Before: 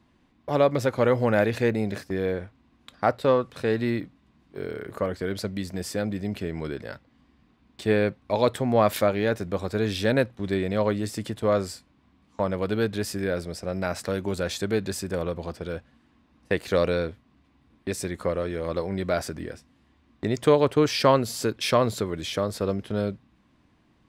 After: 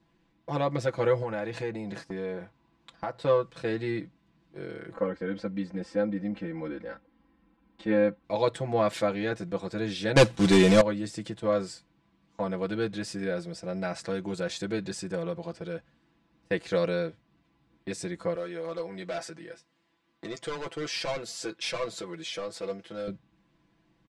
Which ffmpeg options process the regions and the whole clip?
-filter_complex "[0:a]asettb=1/sr,asplit=3[s0][s1][s2];[s0]atrim=end=1.224[s3];[s1]atrim=start=1.22:end=3.25,asetpts=PTS-STARTPTS,afade=t=in:d=0.004:c=qsin,afade=t=out:st=2.026:d=0.004:c=qsin,equalizer=f=930:w=2.5:g=6,acompressor=threshold=0.0447:ratio=2.5:attack=3.2:release=140:knee=1:detection=peak[s4];[s2]atrim=start=3.246[s5];[s3][s4]acrossfade=d=0.004:c1=hsin:c2=qsin[s6];[s6][s5]acrossfade=d=0.004:c1=qsin:c2=hsin,asettb=1/sr,asplit=3[s7][s8][s9];[s7]atrim=end=4.934[s10];[s8]atrim=start=4.93:end=8.24,asetpts=PTS-STARTPTS,afade=t=in:d=0.004:c=qsin,afade=t=out:st=3.306:d=0.004:c=qsin,lowpass=1600,aemphasis=mode=production:type=75fm,aecho=1:1:3.8:0.97,atrim=end_sample=145971[s11];[s9]atrim=start=8.236[s12];[s10][s11]acrossfade=d=0.004:c1=hsin:c2=qsin[s13];[s13][s12]acrossfade=d=0.004:c1=qsin:c2=hsin,asettb=1/sr,asplit=3[s14][s15][s16];[s14]atrim=end=10.164[s17];[s15]atrim=start=10.16:end=10.81,asetpts=PTS-STARTPTS,afade=t=in:d=0.004:c=qsin,afade=t=out:st=0.646:d=0.004:c=qsin,highshelf=f=4000:g=10.5,aeval=exprs='0.447*sin(PI/2*2.82*val(0)/0.447)':c=same,acrusher=bits=3:mode=log:mix=0:aa=0.000001[s18];[s16]atrim=start=10.806[s19];[s17][s18]acrossfade=d=0.004:c1=hsin:c2=qsin[s20];[s20][s19]acrossfade=d=0.004:c1=qsin:c2=hsin,asettb=1/sr,asplit=3[s21][s22][s23];[s21]atrim=end=18.354[s24];[s22]atrim=start=18.35:end=23.08,asetpts=PTS-STARTPTS,afade=t=in:d=0.004:c=qsin,afade=t=out:st=4.726:d=0.004:c=qsin,highpass=f=490:p=1,asoftclip=type=hard:threshold=0.0668,asplit=2[s25][s26];[s26]adelay=12,volume=0.299[s27];[s25][s27]amix=inputs=2:normalize=0,atrim=end_sample=208593[s28];[s23]atrim=start=23.076[s29];[s24][s28]acrossfade=d=0.004:c1=hsin:c2=qsin[s30];[s30][s29]acrossfade=d=0.004:c1=qsin:c2=hsin,lowpass=f=8700:w=0.5412,lowpass=f=8700:w=1.3066,bandreject=f=1200:w=24,aecho=1:1:6:0.95,volume=0.447"

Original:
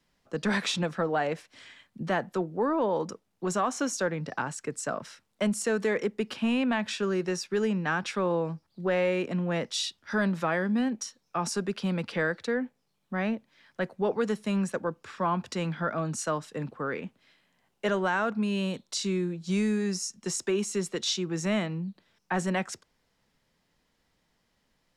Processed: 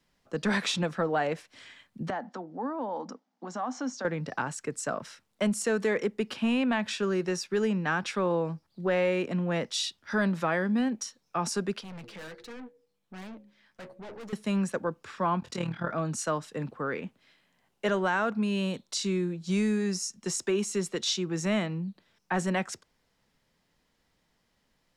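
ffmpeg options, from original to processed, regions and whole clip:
-filter_complex "[0:a]asettb=1/sr,asplit=3[s0][s1][s2];[s0]atrim=end=2.104[s3];[s1]atrim=start=2.1:end=4.05,asetpts=PTS-STARTPTS,afade=t=in:d=0.004:c=qsin,afade=t=out:st=1.946:d=0.004:c=qsin,acompressor=threshold=0.0141:ratio=2:attack=3.2:release=140:knee=1:detection=peak,highpass=f=210:w=0.5412,highpass=f=210:w=1.3066,equalizer=f=250:t=q:w=4:g=10,equalizer=f=390:t=q:w=4:g=-9,equalizer=f=800:t=q:w=4:g=8,equalizer=f=2600:t=q:w=4:g=-7,equalizer=f=3800:t=q:w=4:g=-4,lowpass=f=5900:w=0.5412,lowpass=f=5900:w=1.3066[s4];[s2]atrim=start=4.046[s5];[s3][s4]acrossfade=d=0.004:c1=hsin:c2=qsin[s6];[s6][s5]acrossfade=d=0.004:c1=qsin:c2=hsin,asettb=1/sr,asplit=3[s7][s8][s9];[s7]atrim=end=11.814[s10];[s8]atrim=start=11.81:end=14.33,asetpts=PTS-STARTPTS,afade=t=in:d=0.004:c=qsin,afade=t=out:st=2.516:d=0.004:c=qsin,bandreject=f=69.12:t=h:w=4,bandreject=f=138.24:t=h:w=4,bandreject=f=207.36:t=h:w=4,bandreject=f=276.48:t=h:w=4,bandreject=f=345.6:t=h:w=4,bandreject=f=414.72:t=h:w=4,bandreject=f=483.84:t=h:w=4,bandreject=f=552.96:t=h:w=4,flanger=delay=3.2:depth=6.8:regen=52:speed=1.3:shape=sinusoidal,aeval=exprs='(tanh(112*val(0)+0.35)-tanh(0.35))/112':c=same[s11];[s9]atrim=start=14.326[s12];[s10][s11]acrossfade=d=0.004:c1=hsin:c2=qsin[s13];[s13][s12]acrossfade=d=0.004:c1=qsin:c2=hsin,asettb=1/sr,asplit=3[s14][s15][s16];[s14]atrim=end=15.404[s17];[s15]atrim=start=15.4:end=15.92,asetpts=PTS-STARTPTS,afade=t=in:d=0.004:c=qsin,afade=t=out:st=0.516:d=0.004:c=qsin,tremolo=f=38:d=0.788,asplit=2[s18][s19];[s19]adelay=23,volume=0.501[s20];[s18][s20]amix=inputs=2:normalize=0,atrim=end_sample=22932[s21];[s16]atrim=start=15.916[s22];[s17][s21]acrossfade=d=0.004:c1=hsin:c2=qsin[s23];[s23][s22]acrossfade=d=0.004:c1=qsin:c2=hsin"

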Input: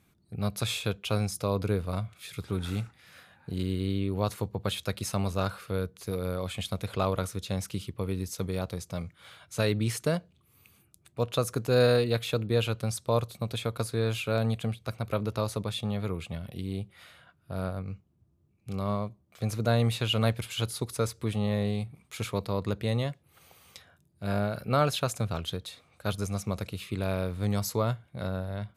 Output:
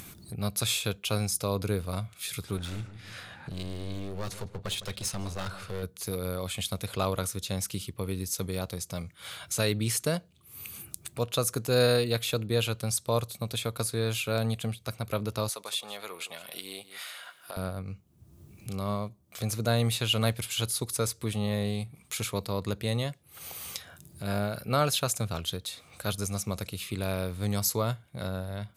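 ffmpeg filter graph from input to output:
-filter_complex "[0:a]asettb=1/sr,asplit=3[s0][s1][s2];[s0]atrim=end=2.574[s3];[s1]atrim=start=2.57:end=5.83,asetpts=PTS-STARTPTS,afade=t=in:d=0.004:c=qsin,afade=t=out:st=3.256:d=0.004:c=qsin,adynamicsmooth=sensitivity=6:basefreq=7300,aeval=exprs='clip(val(0),-1,0.0211)':c=same,asplit=2[s4][s5];[s5]adelay=158,lowpass=f=1600:p=1,volume=0.224,asplit=2[s6][s7];[s7]adelay=158,lowpass=f=1600:p=1,volume=0.35,asplit=2[s8][s9];[s9]adelay=158,lowpass=f=1600:p=1,volume=0.35[s10];[s4][s6][s8][s10]amix=inputs=4:normalize=0,atrim=end_sample=143766[s11];[s2]atrim=start=5.826[s12];[s3][s11]acrossfade=d=0.004:c1=hsin:c2=qsin[s13];[s13][s12]acrossfade=d=0.004:c1=qsin:c2=hsin,asettb=1/sr,asplit=3[s14][s15][s16];[s14]atrim=end=15.494[s17];[s15]atrim=start=15.49:end=17.57,asetpts=PTS-STARTPTS,afade=t=in:d=0.004:c=qsin,afade=t=out:st=2.076:d=0.004:c=qsin,highpass=670,aecho=1:1:164:0.141,atrim=end_sample=91728[s18];[s16]atrim=start=17.566[s19];[s17][s18]acrossfade=d=0.004:c1=hsin:c2=qsin[s20];[s20][s19]acrossfade=d=0.004:c1=qsin:c2=hsin,acompressor=mode=upward:threshold=0.0224:ratio=2.5,highshelf=f=4100:g=11,volume=0.841"

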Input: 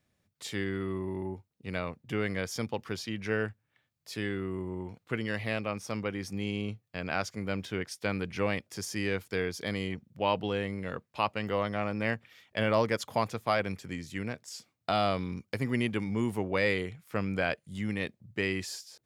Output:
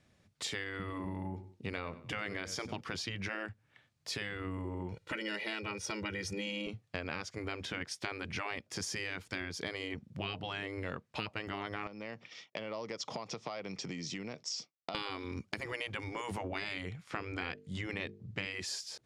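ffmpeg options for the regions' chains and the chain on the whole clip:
-filter_complex "[0:a]asettb=1/sr,asplit=3[s0][s1][s2];[s0]atrim=end=0.784[s3];[s1]atrim=start=0.78:end=2.81,asetpts=PTS-STARTPTS,afade=t=in:d=0.004:c=qsin,afade=t=out:st=2.026:d=0.004:c=qsin,bandreject=f=50:t=h:w=6,bandreject=f=100:t=h:w=6,bandreject=f=150:t=h:w=6,bandreject=f=200:t=h:w=6,bandreject=f=250:t=h:w=6,bandreject=f=300:t=h:w=6,bandreject=f=350:t=h:w=6,aecho=1:1:94|188:0.119|0.0273,atrim=end_sample=89523[s4];[s2]atrim=start=2.806[s5];[s3][s4]acrossfade=d=0.004:c1=hsin:c2=qsin[s6];[s6][s5]acrossfade=d=0.004:c1=qsin:c2=hsin,asettb=1/sr,asplit=3[s7][s8][s9];[s7]atrim=end=4.924[s10];[s8]atrim=start=4.92:end=6.67,asetpts=PTS-STARTPTS,afade=t=in:d=0.004:c=qsin,afade=t=out:st=1.746:d=0.004:c=qsin,equalizer=f=1000:w=3.8:g=-7,aecho=1:1:2.1:0.95,atrim=end_sample=77175[s11];[s9]atrim=start=6.666[s12];[s10][s11]acrossfade=d=0.004:c1=hsin:c2=qsin[s13];[s13][s12]acrossfade=d=0.004:c1=qsin:c2=hsin,asettb=1/sr,asplit=3[s14][s15][s16];[s14]atrim=end=11.874[s17];[s15]atrim=start=11.87:end=14.95,asetpts=PTS-STARTPTS,afade=t=in:d=0.004:c=qsin,afade=t=out:st=3.076:d=0.004:c=qsin,agate=range=0.0224:threshold=0.00158:ratio=3:release=100:detection=peak,acompressor=threshold=0.00891:ratio=6:attack=3.2:release=140:knee=1:detection=peak,highpass=f=140:w=0.5412,highpass=f=140:w=1.3066,equalizer=f=220:t=q:w=4:g=-4,equalizer=f=1600:t=q:w=4:g=-9,equalizer=f=5500:t=q:w=4:g=9,lowpass=f=7000:w=0.5412,lowpass=f=7000:w=1.3066[s18];[s16]atrim=start=14.946[s19];[s17][s18]acrossfade=d=0.004:c1=hsin:c2=qsin[s20];[s20][s19]acrossfade=d=0.004:c1=qsin:c2=hsin,asettb=1/sr,asplit=3[s21][s22][s23];[s21]atrim=end=17.024[s24];[s22]atrim=start=17.02:end=18.46,asetpts=PTS-STARTPTS,afade=t=in:d=0.004:c=qsin,afade=t=out:st=1.436:d=0.004:c=qsin,lowpass=7300,bandreject=f=50:t=h:w=6,bandreject=f=100:t=h:w=6,bandreject=f=150:t=h:w=6,bandreject=f=200:t=h:w=6,bandreject=f=250:t=h:w=6,bandreject=f=300:t=h:w=6,bandreject=f=350:t=h:w=6,bandreject=f=400:t=h:w=6,bandreject=f=450:t=h:w=6[s25];[s23]atrim=start=18.456[s26];[s24][s25]acrossfade=d=0.004:c1=hsin:c2=qsin[s27];[s27][s26]acrossfade=d=0.004:c1=qsin:c2=hsin,lowpass=7800,afftfilt=real='re*lt(hypot(re,im),0.1)':imag='im*lt(hypot(re,im),0.1)':win_size=1024:overlap=0.75,acompressor=threshold=0.00708:ratio=6,volume=2.37"

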